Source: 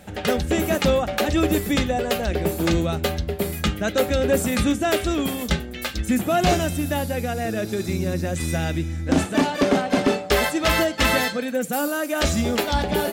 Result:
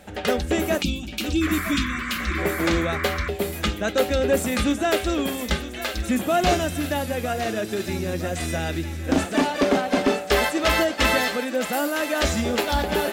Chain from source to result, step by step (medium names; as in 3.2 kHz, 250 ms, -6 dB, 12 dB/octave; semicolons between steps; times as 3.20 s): treble shelf 7.7 kHz -4 dB; time-frequency box 0.82–2.39 s, 380–2200 Hz -26 dB; peaking EQ 130 Hz -10 dB 0.9 oct; thinning echo 959 ms, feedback 71%, high-pass 700 Hz, level -10.5 dB; painted sound noise, 1.41–3.29 s, 1–2.4 kHz -31 dBFS